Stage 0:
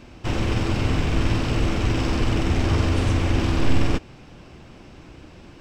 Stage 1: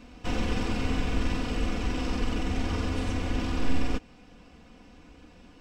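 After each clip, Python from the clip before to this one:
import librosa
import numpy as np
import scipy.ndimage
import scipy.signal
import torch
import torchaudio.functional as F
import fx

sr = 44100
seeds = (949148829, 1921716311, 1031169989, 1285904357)

y = x + 0.7 * np.pad(x, (int(4.1 * sr / 1000.0), 0))[:len(x)]
y = fx.rider(y, sr, range_db=4, speed_s=2.0)
y = F.gain(torch.from_numpy(y), -8.5).numpy()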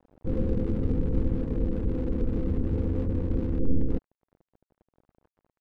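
y = scipy.signal.sosfilt(scipy.signal.cheby1(6, 6, 530.0, 'lowpass', fs=sr, output='sos'), x)
y = np.sign(y) * np.maximum(np.abs(y) - 10.0 ** (-50.0 / 20.0), 0.0)
y = F.gain(torch.from_numpy(y), 7.5).numpy()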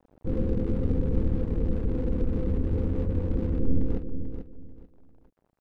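y = fx.echo_feedback(x, sr, ms=439, feedback_pct=24, wet_db=-8.5)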